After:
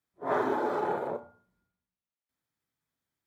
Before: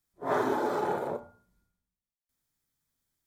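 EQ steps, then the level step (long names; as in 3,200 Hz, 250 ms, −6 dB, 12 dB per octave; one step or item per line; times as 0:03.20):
high-pass filter 76 Hz
bass and treble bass −3 dB, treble −10 dB
0.0 dB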